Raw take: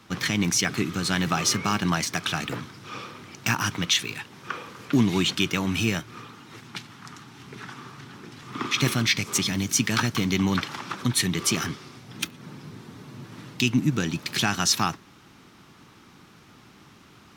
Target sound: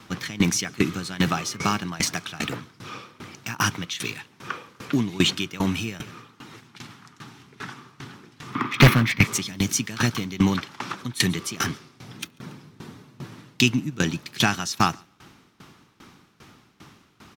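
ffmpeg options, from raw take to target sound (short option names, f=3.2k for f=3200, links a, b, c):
-filter_complex "[0:a]asettb=1/sr,asplit=3[a][b][c];[a]atrim=end=8.554[d];[b]atrim=start=8.55:end=9.26,asetpts=PTS-STARTPTS,afade=t=in:d=0.004:c=qsin,afade=t=out:st=0.706:d=0.004:c=qsin,equalizer=f=125:t=o:w=1:g=9,equalizer=f=250:t=o:w=1:g=7,equalizer=f=1k:t=o:w=1:g=8,equalizer=f=2k:t=o:w=1:g=9,equalizer=f=8k:t=o:w=1:g=-11,equalizer=f=16k:t=o:w=1:g=6[e];[c]atrim=start=9.256[f];[d][e]acrossfade=d=0.004:c1=hsin:c2=qsin[g];[g][f]acrossfade=d=0.004:c1=qsin:c2=hsin,aeval=exprs='0.355*(abs(mod(val(0)/0.355+3,4)-2)-1)':c=same,aecho=1:1:141|282:0.0708|0.0234,aeval=exprs='val(0)*pow(10,-20*if(lt(mod(2.5*n/s,1),2*abs(2.5)/1000),1-mod(2.5*n/s,1)/(2*abs(2.5)/1000),(mod(2.5*n/s,1)-2*abs(2.5)/1000)/(1-2*abs(2.5)/1000))/20)':c=same,volume=6.5dB"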